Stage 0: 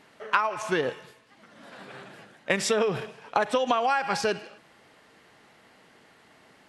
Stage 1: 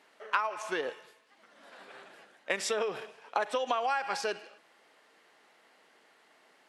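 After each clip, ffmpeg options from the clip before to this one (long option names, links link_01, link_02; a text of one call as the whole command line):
ffmpeg -i in.wav -af "highpass=370,volume=-5.5dB" out.wav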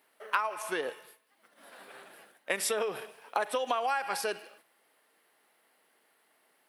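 ffmpeg -i in.wav -af "agate=range=-7dB:threshold=-59dB:ratio=16:detection=peak,aexciter=amount=4.4:drive=8.5:freq=9300" out.wav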